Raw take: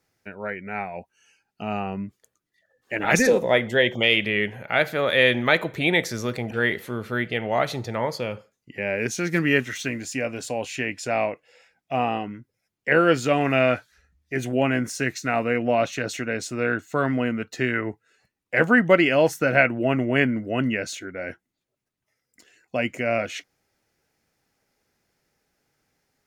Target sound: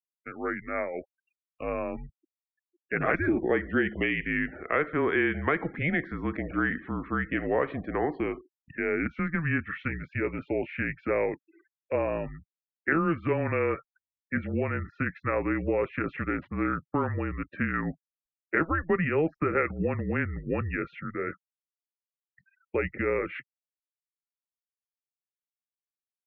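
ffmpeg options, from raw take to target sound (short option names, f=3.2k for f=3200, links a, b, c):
-filter_complex "[0:a]asettb=1/sr,asplit=3[a][b][c];[a]atrim=end=16.164[d];[b]atrim=start=16.16:end=17.07,asetpts=PTS-STARTPTS,afade=t=in:d=0.004:c=qsin,afade=t=out:st=0.906:d=0.004:c=qsin,adynamicsmooth=sensitivity=8:basefreq=700[e];[c]atrim=start=17.066[f];[d][e]acrossfade=d=0.004:c1=hsin:c2=qsin[g];[g][f]acrossfade=d=0.004:c1=qsin:c2=hsin,adynamicequalizer=threshold=0.0141:dfrequency=200:dqfactor=0.94:tfrequency=200:tqfactor=0.94:attack=5:release=100:ratio=0.375:range=3:mode=boostabove:tftype=bell,acompressor=threshold=-21dB:ratio=5,afftfilt=real='re*gte(hypot(re,im),0.00631)':imag='im*gte(hypot(re,im),0.00631)':win_size=1024:overlap=0.75,highpass=f=310:t=q:w=0.5412,highpass=f=310:t=q:w=1.307,lowpass=f=2.5k:t=q:w=0.5176,lowpass=f=2.5k:t=q:w=0.7071,lowpass=f=2.5k:t=q:w=1.932,afreqshift=-160"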